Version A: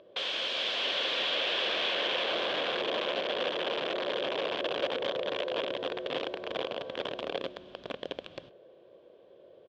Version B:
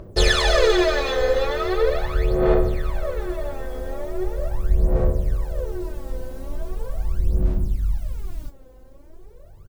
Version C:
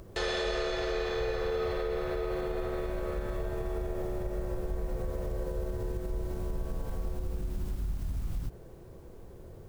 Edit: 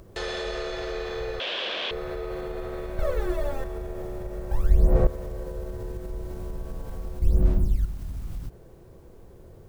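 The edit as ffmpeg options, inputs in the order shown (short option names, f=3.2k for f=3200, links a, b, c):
-filter_complex "[1:a]asplit=3[a][b][c];[2:a]asplit=5[d][e][f][g][h];[d]atrim=end=1.402[i];[0:a]atrim=start=1.398:end=1.912[j];[e]atrim=start=1.908:end=2.992[k];[a]atrim=start=2.988:end=3.642[l];[f]atrim=start=3.638:end=4.512[m];[b]atrim=start=4.508:end=5.072[n];[g]atrim=start=5.068:end=7.222[o];[c]atrim=start=7.218:end=7.852[p];[h]atrim=start=7.848[q];[i][j]acrossfade=d=0.004:c1=hsin:c2=hsin[r];[r][k]acrossfade=d=0.004:c1=hsin:c2=hsin[s];[s][l]acrossfade=d=0.004:c1=hsin:c2=hsin[t];[t][m]acrossfade=d=0.004:c1=hsin:c2=hsin[u];[u][n]acrossfade=d=0.004:c1=hsin:c2=hsin[v];[v][o]acrossfade=d=0.004:c1=hsin:c2=hsin[w];[w][p]acrossfade=d=0.004:c1=hsin:c2=hsin[x];[x][q]acrossfade=d=0.004:c1=hsin:c2=hsin"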